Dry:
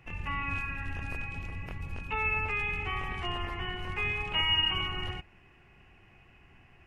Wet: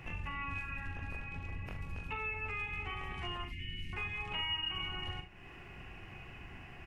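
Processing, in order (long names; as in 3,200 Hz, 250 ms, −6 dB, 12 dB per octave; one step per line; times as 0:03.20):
0:00.87–0:01.65: high-shelf EQ 4,800 Hz −7.5 dB
0:03.44–0:03.93: elliptic band-stop filter 280–2,200 Hz, stop band 40 dB
downward compressor 3 to 1, threshold −51 dBFS, peak gain reduction 19.5 dB
ambience of single reflections 42 ms −7.5 dB, 76 ms −12.5 dB
level +7.5 dB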